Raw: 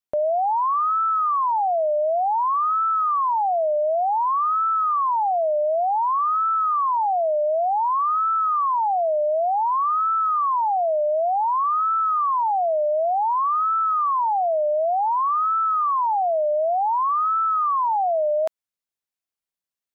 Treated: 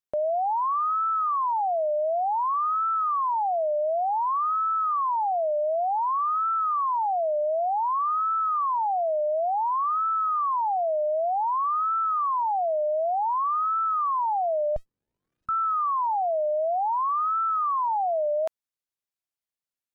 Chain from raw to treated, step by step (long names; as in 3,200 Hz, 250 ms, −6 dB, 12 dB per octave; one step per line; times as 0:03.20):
tape wow and flutter 16 cents
0:14.76–0:15.49: windowed peak hold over 65 samples
level −4 dB